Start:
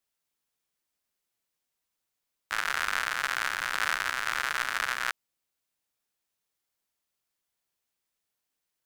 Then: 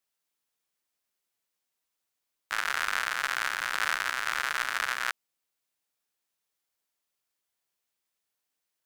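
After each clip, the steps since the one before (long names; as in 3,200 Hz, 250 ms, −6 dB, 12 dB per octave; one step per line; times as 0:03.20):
low-shelf EQ 190 Hz −6.5 dB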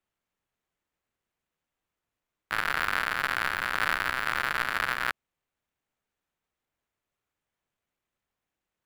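running median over 9 samples
low-shelf EQ 190 Hz +9 dB
level +2.5 dB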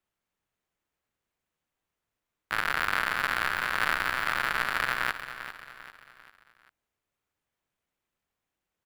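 repeating echo 396 ms, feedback 44%, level −11.5 dB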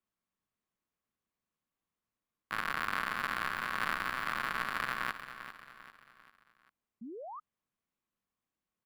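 hollow resonant body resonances 210/1,100 Hz, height 8 dB, ringing for 25 ms
sound drawn into the spectrogram rise, 0:07.01–0:07.40, 210–1,300 Hz −36 dBFS
level −8 dB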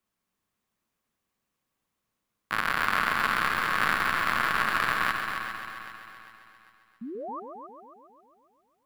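echo machine with several playback heads 135 ms, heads first and second, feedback 55%, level −9.5 dB
level +7.5 dB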